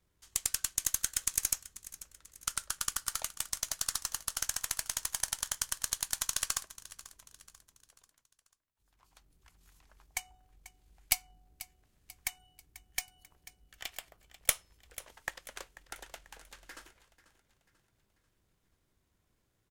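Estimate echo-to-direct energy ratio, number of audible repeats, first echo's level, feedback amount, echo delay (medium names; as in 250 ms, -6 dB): -16.0 dB, 3, -17.0 dB, 45%, 490 ms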